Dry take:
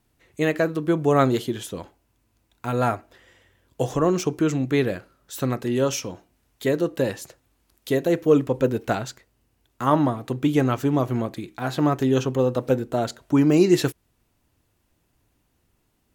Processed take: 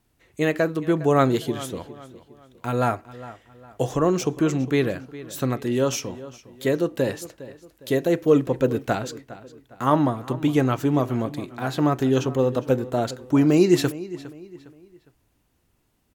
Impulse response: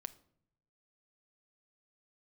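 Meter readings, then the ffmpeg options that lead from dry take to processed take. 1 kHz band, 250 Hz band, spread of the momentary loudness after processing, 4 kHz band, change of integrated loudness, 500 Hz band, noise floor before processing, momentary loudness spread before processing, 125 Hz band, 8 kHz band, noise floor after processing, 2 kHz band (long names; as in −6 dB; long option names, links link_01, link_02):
0.0 dB, 0.0 dB, 19 LU, 0.0 dB, 0.0 dB, 0.0 dB, −69 dBFS, 12 LU, 0.0 dB, 0.0 dB, −67 dBFS, 0.0 dB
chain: -filter_complex "[0:a]asplit=2[link_01][link_02];[link_02]adelay=408,lowpass=frequency=4900:poles=1,volume=-16.5dB,asplit=2[link_03][link_04];[link_04]adelay=408,lowpass=frequency=4900:poles=1,volume=0.37,asplit=2[link_05][link_06];[link_06]adelay=408,lowpass=frequency=4900:poles=1,volume=0.37[link_07];[link_01][link_03][link_05][link_07]amix=inputs=4:normalize=0"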